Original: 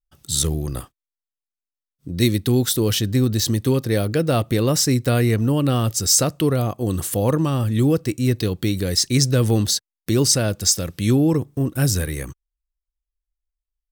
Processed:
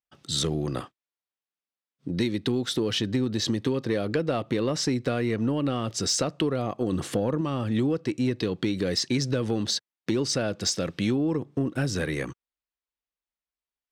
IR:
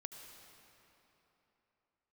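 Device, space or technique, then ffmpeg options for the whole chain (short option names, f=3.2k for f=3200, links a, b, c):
AM radio: -filter_complex "[0:a]asettb=1/sr,asplit=3[a][b][c];[a]atrim=end=6.924[d];[b]atrim=start=6.92:end=7.41,asetpts=PTS-STARTPTS,afade=t=in:d=0.004:c=qsin,afade=t=out:st=0.486:d=0.004:c=qsin,lowshelf=f=400:g=6[e];[c]atrim=start=7.406[f];[d][e]acrossfade=d=0.004:c1=hsin:c2=qsin[g];[g][f]acrossfade=d=0.004:c1=qsin:c2=hsin,highpass=180,lowpass=4k,acompressor=threshold=-24dB:ratio=10,asoftclip=type=tanh:threshold=-16dB,volume=3dB"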